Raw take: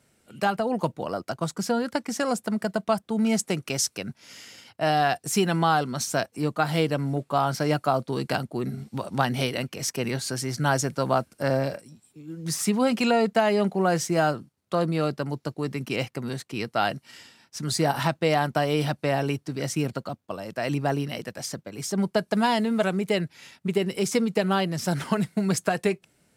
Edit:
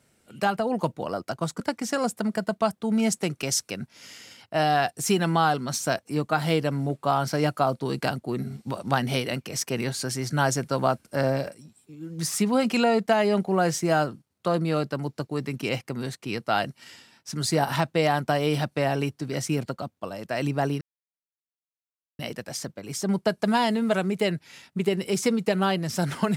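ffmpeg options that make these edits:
-filter_complex "[0:a]asplit=3[a][b][c];[a]atrim=end=1.602[d];[b]atrim=start=1.868:end=21.08,asetpts=PTS-STARTPTS,afade=t=out:st=19.208:d=0.004:c=hsin,apad=pad_dur=1.38[e];[c]atrim=start=21.08,asetpts=PTS-STARTPTS,afade=t=in:d=0.004:c=hsin[f];[e][f]concat=n=2:v=0:a=1[g];[d][g]acrossfade=d=0.004:c1=hsin:c2=hsin"

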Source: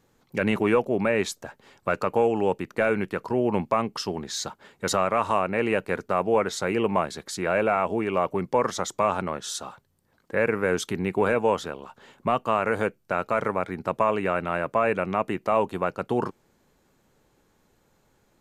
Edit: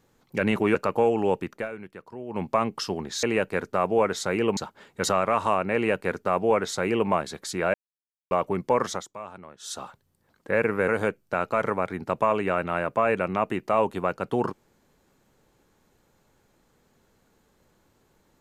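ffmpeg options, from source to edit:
-filter_complex "[0:a]asplit=11[a][b][c][d][e][f][g][h][i][j][k];[a]atrim=end=0.752[l];[b]atrim=start=1.928:end=2.87,asetpts=PTS-STARTPTS,afade=t=out:st=0.722:d=0.22:silence=0.199526[m];[c]atrim=start=2.87:end=3.46,asetpts=PTS-STARTPTS,volume=-14dB[n];[d]atrim=start=3.46:end=4.412,asetpts=PTS-STARTPTS,afade=t=in:d=0.22:silence=0.199526[o];[e]atrim=start=5.588:end=6.932[p];[f]atrim=start=4.408:end=7.58,asetpts=PTS-STARTPTS,afade=t=out:st=3.168:d=0.004:c=hsin[q];[g]atrim=start=7.58:end=8.15,asetpts=PTS-STARTPTS,volume=0[r];[h]atrim=start=8.15:end=8.92,asetpts=PTS-STARTPTS,afade=t=in:d=0.004:c=hsin,afade=t=out:st=0.59:d=0.18:silence=0.16788[s];[i]atrim=start=8.92:end=9.43,asetpts=PTS-STARTPTS,volume=-15.5dB[t];[j]atrim=start=9.43:end=10.722,asetpts=PTS-STARTPTS,afade=t=in:d=0.18:silence=0.16788[u];[k]atrim=start=12.658[v];[m][n][o]concat=n=3:v=0:a=1[w];[l][w]acrossfade=d=0.004:c1=hsin:c2=hsin[x];[x][p]acrossfade=d=0.004:c1=hsin:c2=hsin[y];[q][r][s][t][u]concat=n=5:v=0:a=1[z];[y][z]acrossfade=d=0.004:c1=hsin:c2=hsin[aa];[aa][v]acrossfade=d=0.004:c1=hsin:c2=hsin"

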